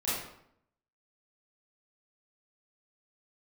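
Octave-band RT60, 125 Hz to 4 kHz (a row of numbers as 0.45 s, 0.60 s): 0.80 s, 0.80 s, 0.70 s, 0.70 s, 0.60 s, 0.50 s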